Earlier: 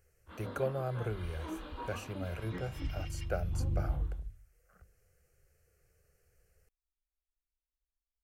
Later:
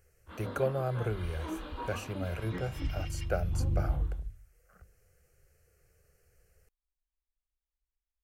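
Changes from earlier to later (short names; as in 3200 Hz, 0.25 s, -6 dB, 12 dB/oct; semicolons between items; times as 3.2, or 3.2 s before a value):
speech +3.5 dB; background +3.0 dB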